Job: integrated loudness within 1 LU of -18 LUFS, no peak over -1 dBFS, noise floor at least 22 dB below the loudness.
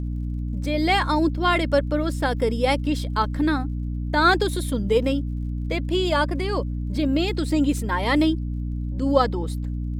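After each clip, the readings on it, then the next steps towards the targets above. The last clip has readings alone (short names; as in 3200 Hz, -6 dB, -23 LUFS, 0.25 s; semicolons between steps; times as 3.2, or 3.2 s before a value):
ticks 32/s; hum 60 Hz; harmonics up to 300 Hz; hum level -25 dBFS; loudness -23.0 LUFS; peak -5.0 dBFS; loudness target -18.0 LUFS
-> de-click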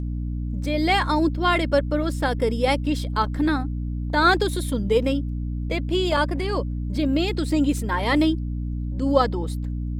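ticks 0.80/s; hum 60 Hz; harmonics up to 300 Hz; hum level -25 dBFS
-> de-hum 60 Hz, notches 5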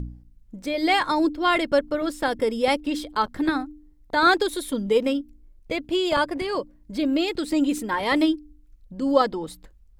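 hum none; loudness -23.5 LUFS; peak -5.5 dBFS; loudness target -18.0 LUFS
-> gain +5.5 dB; limiter -1 dBFS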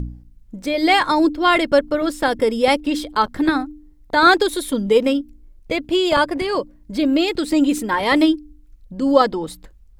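loudness -18.5 LUFS; peak -1.0 dBFS; noise floor -48 dBFS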